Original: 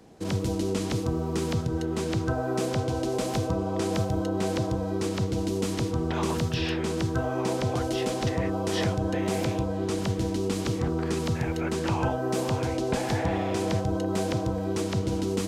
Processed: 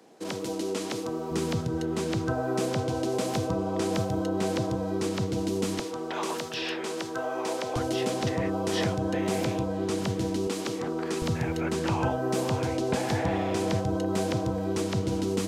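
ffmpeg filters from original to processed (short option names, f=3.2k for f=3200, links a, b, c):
-af "asetnsamples=n=441:p=0,asendcmd='1.31 highpass f 110;5.8 highpass f 410;7.76 highpass f 110;10.47 highpass f 270;11.22 highpass f 83',highpass=300"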